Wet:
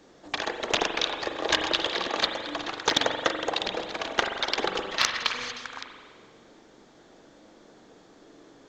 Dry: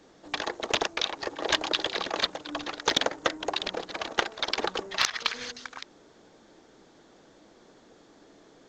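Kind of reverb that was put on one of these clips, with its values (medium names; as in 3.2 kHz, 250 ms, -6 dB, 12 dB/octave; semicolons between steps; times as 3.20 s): spring tank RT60 1.7 s, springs 42 ms, chirp 60 ms, DRR 4.5 dB; trim +1 dB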